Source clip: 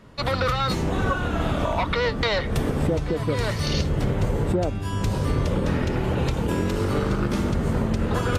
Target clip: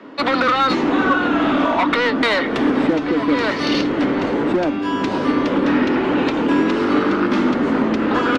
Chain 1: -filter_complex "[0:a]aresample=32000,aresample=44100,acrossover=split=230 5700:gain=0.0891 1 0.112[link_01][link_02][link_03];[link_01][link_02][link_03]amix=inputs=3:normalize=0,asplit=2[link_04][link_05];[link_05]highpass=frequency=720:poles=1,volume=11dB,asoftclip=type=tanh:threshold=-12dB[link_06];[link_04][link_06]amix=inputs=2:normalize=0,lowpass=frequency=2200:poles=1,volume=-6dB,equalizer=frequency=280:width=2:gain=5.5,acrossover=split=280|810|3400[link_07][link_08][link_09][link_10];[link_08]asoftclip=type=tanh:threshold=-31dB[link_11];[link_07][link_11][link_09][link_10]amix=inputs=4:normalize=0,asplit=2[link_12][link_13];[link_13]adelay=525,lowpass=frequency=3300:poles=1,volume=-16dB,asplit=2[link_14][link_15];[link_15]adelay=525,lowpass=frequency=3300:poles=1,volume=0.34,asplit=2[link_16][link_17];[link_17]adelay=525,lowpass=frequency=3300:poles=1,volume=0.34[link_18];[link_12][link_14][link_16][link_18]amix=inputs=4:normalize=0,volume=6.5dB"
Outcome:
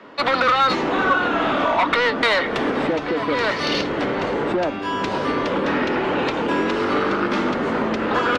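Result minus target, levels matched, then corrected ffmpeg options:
250 Hz band −4.5 dB
-filter_complex "[0:a]aresample=32000,aresample=44100,acrossover=split=230 5700:gain=0.0891 1 0.112[link_01][link_02][link_03];[link_01][link_02][link_03]amix=inputs=3:normalize=0,asplit=2[link_04][link_05];[link_05]highpass=frequency=720:poles=1,volume=11dB,asoftclip=type=tanh:threshold=-12dB[link_06];[link_04][link_06]amix=inputs=2:normalize=0,lowpass=frequency=2200:poles=1,volume=-6dB,equalizer=frequency=280:width=2:gain=16.5,acrossover=split=280|810|3400[link_07][link_08][link_09][link_10];[link_08]asoftclip=type=tanh:threshold=-31dB[link_11];[link_07][link_11][link_09][link_10]amix=inputs=4:normalize=0,asplit=2[link_12][link_13];[link_13]adelay=525,lowpass=frequency=3300:poles=1,volume=-16dB,asplit=2[link_14][link_15];[link_15]adelay=525,lowpass=frequency=3300:poles=1,volume=0.34,asplit=2[link_16][link_17];[link_17]adelay=525,lowpass=frequency=3300:poles=1,volume=0.34[link_18];[link_12][link_14][link_16][link_18]amix=inputs=4:normalize=0,volume=6.5dB"

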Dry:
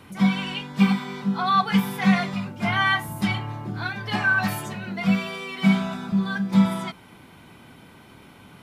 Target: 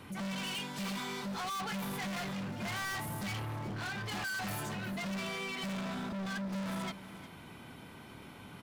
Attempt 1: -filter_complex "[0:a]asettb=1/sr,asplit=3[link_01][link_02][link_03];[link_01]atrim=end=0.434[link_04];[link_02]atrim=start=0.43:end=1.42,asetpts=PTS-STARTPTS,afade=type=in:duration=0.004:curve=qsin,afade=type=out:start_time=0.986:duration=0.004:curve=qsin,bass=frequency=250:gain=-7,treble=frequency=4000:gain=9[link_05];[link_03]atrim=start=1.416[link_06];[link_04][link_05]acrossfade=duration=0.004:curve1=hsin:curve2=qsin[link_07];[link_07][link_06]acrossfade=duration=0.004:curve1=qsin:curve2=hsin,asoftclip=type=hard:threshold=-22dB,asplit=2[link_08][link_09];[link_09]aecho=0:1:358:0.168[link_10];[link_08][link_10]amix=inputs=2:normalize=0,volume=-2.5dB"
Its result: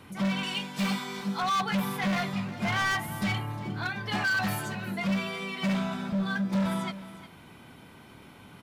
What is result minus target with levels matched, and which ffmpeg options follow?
hard clipping: distortion −6 dB
-filter_complex "[0:a]asettb=1/sr,asplit=3[link_01][link_02][link_03];[link_01]atrim=end=0.434[link_04];[link_02]atrim=start=0.43:end=1.42,asetpts=PTS-STARTPTS,afade=type=in:duration=0.004:curve=qsin,afade=type=out:start_time=0.986:duration=0.004:curve=qsin,bass=frequency=250:gain=-7,treble=frequency=4000:gain=9[link_05];[link_03]atrim=start=1.416[link_06];[link_04][link_05]acrossfade=duration=0.004:curve1=hsin:curve2=qsin[link_07];[link_07][link_06]acrossfade=duration=0.004:curve1=qsin:curve2=hsin,asoftclip=type=hard:threshold=-34dB,asplit=2[link_08][link_09];[link_09]aecho=0:1:358:0.168[link_10];[link_08][link_10]amix=inputs=2:normalize=0,volume=-2.5dB"

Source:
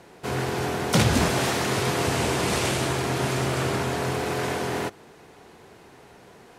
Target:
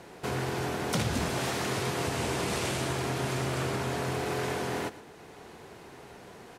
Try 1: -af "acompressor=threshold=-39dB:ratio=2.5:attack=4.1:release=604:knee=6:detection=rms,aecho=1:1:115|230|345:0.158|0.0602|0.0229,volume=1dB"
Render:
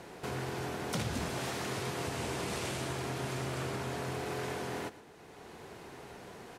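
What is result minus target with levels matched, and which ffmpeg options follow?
downward compressor: peak gain reduction +5.5 dB
-af "acompressor=threshold=-29.5dB:ratio=2.5:attack=4.1:release=604:knee=6:detection=rms,aecho=1:1:115|230|345:0.158|0.0602|0.0229,volume=1dB"

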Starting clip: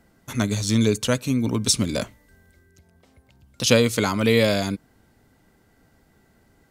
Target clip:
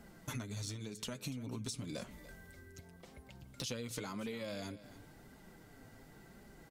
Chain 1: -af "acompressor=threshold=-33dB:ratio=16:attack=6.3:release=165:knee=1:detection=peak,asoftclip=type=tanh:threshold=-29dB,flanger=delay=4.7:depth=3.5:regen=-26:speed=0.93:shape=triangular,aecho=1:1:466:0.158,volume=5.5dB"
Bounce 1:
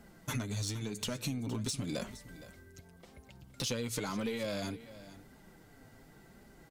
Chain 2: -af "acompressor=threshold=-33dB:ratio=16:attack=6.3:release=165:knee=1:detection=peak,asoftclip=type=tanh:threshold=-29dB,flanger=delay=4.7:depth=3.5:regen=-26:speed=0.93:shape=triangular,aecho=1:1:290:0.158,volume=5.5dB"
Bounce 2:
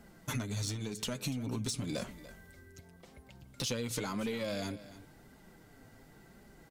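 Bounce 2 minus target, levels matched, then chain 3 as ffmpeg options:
downward compressor: peak gain reduction −7 dB
-af "acompressor=threshold=-40.5dB:ratio=16:attack=6.3:release=165:knee=1:detection=peak,asoftclip=type=tanh:threshold=-29dB,flanger=delay=4.7:depth=3.5:regen=-26:speed=0.93:shape=triangular,aecho=1:1:290:0.158,volume=5.5dB"

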